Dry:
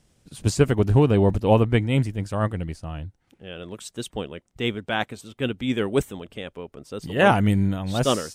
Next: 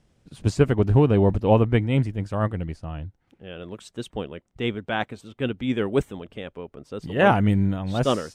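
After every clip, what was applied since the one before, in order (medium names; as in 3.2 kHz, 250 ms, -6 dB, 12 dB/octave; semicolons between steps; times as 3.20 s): low-pass 2.7 kHz 6 dB/octave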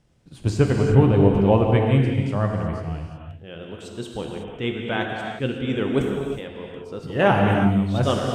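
reverberation, pre-delay 3 ms, DRR 0.5 dB; trim -1 dB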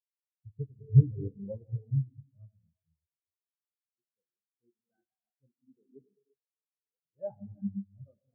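spectral contrast expander 4:1; trim -7 dB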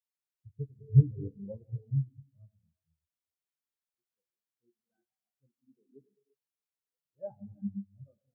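doubling 14 ms -13.5 dB; trim -2 dB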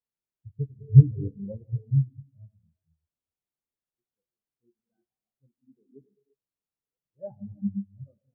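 tilt shelf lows +8 dB, about 780 Hz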